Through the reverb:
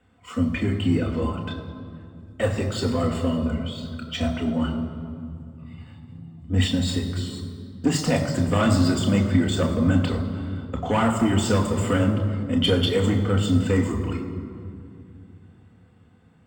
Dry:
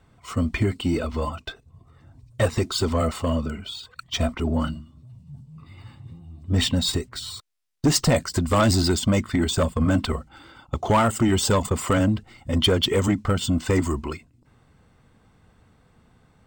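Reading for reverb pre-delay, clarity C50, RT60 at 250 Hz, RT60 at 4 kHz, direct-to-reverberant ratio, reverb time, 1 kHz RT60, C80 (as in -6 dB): 3 ms, 7.5 dB, 3.5 s, 1.5 s, 2.0 dB, 2.4 s, 2.3 s, 8.5 dB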